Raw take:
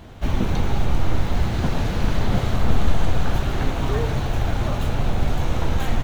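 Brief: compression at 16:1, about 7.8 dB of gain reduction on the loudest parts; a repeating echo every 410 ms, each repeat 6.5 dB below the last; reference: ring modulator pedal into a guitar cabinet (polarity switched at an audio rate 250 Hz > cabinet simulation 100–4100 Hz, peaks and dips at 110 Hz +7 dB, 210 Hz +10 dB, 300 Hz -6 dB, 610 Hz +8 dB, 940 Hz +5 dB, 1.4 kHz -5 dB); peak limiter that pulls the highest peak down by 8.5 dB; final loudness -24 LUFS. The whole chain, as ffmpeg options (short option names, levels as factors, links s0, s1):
-af "acompressor=threshold=0.141:ratio=16,alimiter=limit=0.112:level=0:latency=1,aecho=1:1:410|820|1230|1640|2050|2460:0.473|0.222|0.105|0.0491|0.0231|0.0109,aeval=exprs='val(0)*sgn(sin(2*PI*250*n/s))':c=same,highpass=100,equalizer=f=110:t=q:w=4:g=7,equalizer=f=210:t=q:w=4:g=10,equalizer=f=300:t=q:w=4:g=-6,equalizer=f=610:t=q:w=4:g=8,equalizer=f=940:t=q:w=4:g=5,equalizer=f=1400:t=q:w=4:g=-5,lowpass=f=4100:w=0.5412,lowpass=f=4100:w=1.3066,volume=0.794"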